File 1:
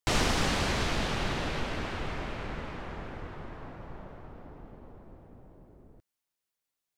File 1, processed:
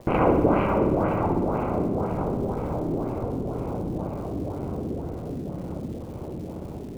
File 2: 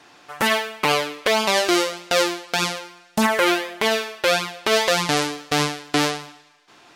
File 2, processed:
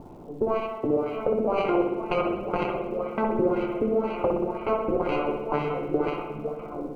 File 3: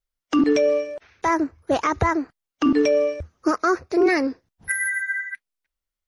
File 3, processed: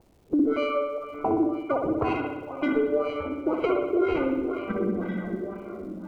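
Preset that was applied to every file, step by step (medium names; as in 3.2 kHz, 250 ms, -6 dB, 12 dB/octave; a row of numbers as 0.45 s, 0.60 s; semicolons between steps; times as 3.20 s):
backward echo that repeats 427 ms, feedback 79%, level -13.5 dB; high-pass 79 Hz; sample-and-hold 25×; LFO low-pass sine 2 Hz 290–2600 Hz; dynamic bell 440 Hz, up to +7 dB, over -31 dBFS, Q 1.5; compression, threshold -14 dBFS; treble shelf 3.3 kHz -5.5 dB; level-controlled noise filter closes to 480 Hz, open at -15.5 dBFS; upward compressor, threshold -25 dBFS; crackle 420 per s -47 dBFS; spring tank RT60 1 s, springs 60 ms, chirp 60 ms, DRR 3 dB; normalise loudness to -27 LUFS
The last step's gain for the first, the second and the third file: +4.0 dB, -7.5 dB, -7.5 dB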